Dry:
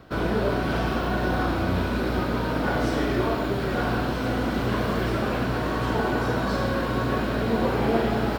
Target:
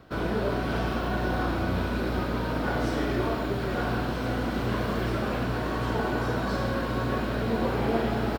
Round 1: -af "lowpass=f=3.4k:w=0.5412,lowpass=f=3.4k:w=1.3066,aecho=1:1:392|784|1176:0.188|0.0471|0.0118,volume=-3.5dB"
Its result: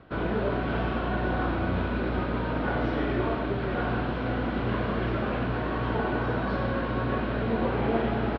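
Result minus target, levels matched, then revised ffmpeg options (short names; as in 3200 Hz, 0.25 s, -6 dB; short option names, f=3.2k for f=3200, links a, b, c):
4000 Hz band -3.5 dB
-af "aecho=1:1:392|784|1176:0.188|0.0471|0.0118,volume=-3.5dB"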